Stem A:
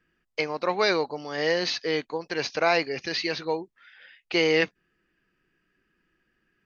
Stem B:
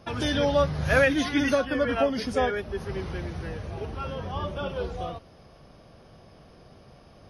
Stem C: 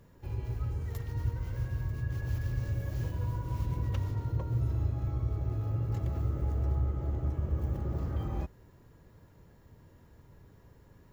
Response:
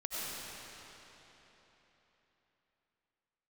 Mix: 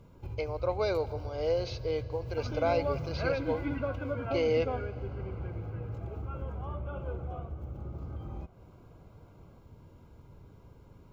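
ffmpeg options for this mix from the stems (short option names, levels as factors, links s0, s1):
-filter_complex "[0:a]equalizer=f=550:t=o:w=1.3:g=13.5,volume=0.158,asplit=2[s0][s1];[s1]volume=0.1[s2];[1:a]lowpass=f=2200:w=0.5412,lowpass=f=2200:w=1.3066,adelay=2300,volume=0.282,asplit=2[s3][s4];[s4]volume=0.141[s5];[2:a]highshelf=f=5900:g=-10,acompressor=threshold=0.01:ratio=6,volume=1.41[s6];[3:a]atrim=start_sample=2205[s7];[s2][s5]amix=inputs=2:normalize=0[s8];[s8][s7]afir=irnorm=-1:irlink=0[s9];[s0][s3][s6][s9]amix=inputs=4:normalize=0,asuperstop=centerf=1800:order=8:qfactor=4.7"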